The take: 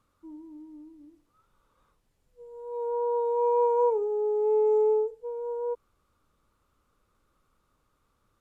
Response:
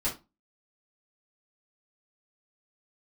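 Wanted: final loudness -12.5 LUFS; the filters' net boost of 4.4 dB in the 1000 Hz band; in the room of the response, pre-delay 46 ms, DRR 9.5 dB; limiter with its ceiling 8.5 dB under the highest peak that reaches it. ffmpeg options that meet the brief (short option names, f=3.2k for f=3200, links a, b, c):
-filter_complex "[0:a]equalizer=f=1k:t=o:g=4.5,alimiter=limit=-23dB:level=0:latency=1,asplit=2[a][b];[1:a]atrim=start_sample=2205,adelay=46[c];[b][c]afir=irnorm=-1:irlink=0,volume=-16dB[d];[a][d]amix=inputs=2:normalize=0,volume=17.5dB"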